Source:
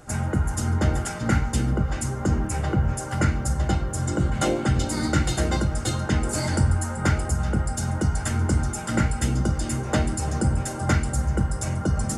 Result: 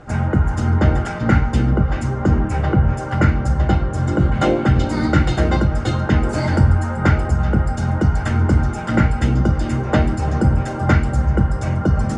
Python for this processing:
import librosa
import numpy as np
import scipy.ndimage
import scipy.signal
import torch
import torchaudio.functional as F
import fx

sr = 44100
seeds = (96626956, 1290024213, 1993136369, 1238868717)

y = scipy.signal.sosfilt(scipy.signal.bessel(2, 2600.0, 'lowpass', norm='mag', fs=sr, output='sos'), x)
y = F.gain(torch.from_numpy(y), 7.0).numpy()